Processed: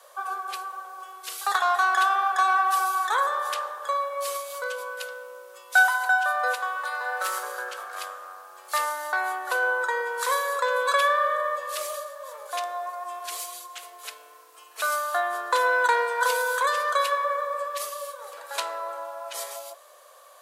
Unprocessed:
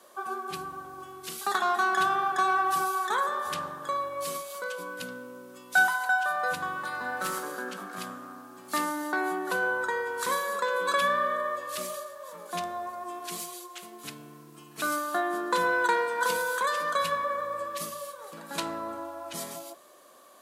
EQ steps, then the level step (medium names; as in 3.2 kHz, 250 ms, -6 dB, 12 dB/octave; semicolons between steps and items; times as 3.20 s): elliptic high-pass 490 Hz, stop band 60 dB; +4.0 dB